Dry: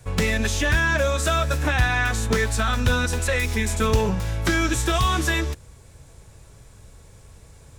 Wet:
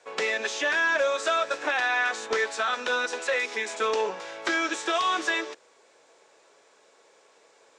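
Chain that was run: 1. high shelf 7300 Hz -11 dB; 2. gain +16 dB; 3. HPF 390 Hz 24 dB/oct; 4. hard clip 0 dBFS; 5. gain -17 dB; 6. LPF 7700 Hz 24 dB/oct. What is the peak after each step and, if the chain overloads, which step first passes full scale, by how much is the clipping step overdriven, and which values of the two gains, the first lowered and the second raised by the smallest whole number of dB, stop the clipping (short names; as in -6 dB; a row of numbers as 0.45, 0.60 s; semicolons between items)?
-9.5, +6.5, +5.0, 0.0, -17.0, -16.0 dBFS; step 2, 5.0 dB; step 2 +11 dB, step 5 -12 dB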